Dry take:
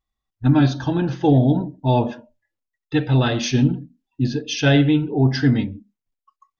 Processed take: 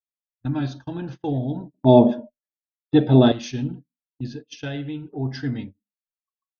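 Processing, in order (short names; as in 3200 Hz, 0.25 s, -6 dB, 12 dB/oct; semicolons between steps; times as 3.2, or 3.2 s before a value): 1.74–3.32 small resonant body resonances 240/380/600/3400 Hz, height 18 dB, ringing for 25 ms; 4.27–5.05 compressor 2.5:1, threshold -19 dBFS, peak gain reduction 6 dB; gate -25 dBFS, range -28 dB; gain -10 dB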